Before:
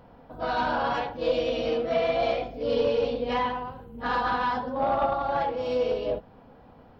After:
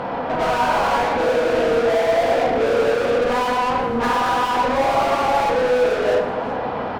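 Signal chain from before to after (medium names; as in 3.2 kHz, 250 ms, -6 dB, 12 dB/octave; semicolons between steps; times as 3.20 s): low-pass that closes with the level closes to 1.5 kHz, closed at -26.5 dBFS; overdrive pedal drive 40 dB, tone 2 kHz, clips at -14 dBFS; delay 378 ms -16.5 dB; reverberation RT60 1.4 s, pre-delay 16 ms, DRR 3.5 dB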